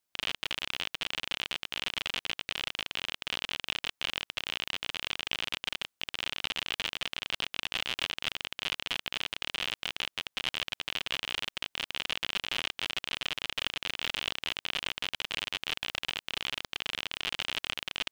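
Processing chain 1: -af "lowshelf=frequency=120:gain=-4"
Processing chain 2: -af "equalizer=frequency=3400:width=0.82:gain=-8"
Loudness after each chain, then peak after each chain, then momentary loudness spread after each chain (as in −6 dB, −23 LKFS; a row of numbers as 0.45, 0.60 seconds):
−33.5, −39.5 LKFS; −10.0, −14.0 dBFS; 2, 2 LU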